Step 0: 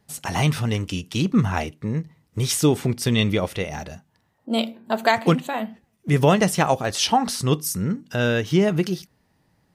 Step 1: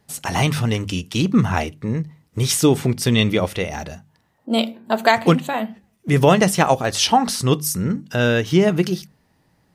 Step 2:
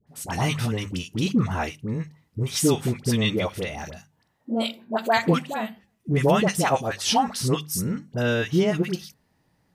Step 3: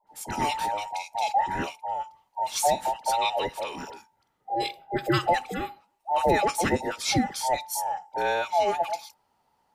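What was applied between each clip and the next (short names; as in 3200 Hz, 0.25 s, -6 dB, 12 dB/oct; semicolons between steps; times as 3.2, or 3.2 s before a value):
notches 50/100/150/200 Hz; gain +3.5 dB
dispersion highs, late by 71 ms, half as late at 950 Hz; gain -5.5 dB
band inversion scrambler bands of 1000 Hz; gain -3 dB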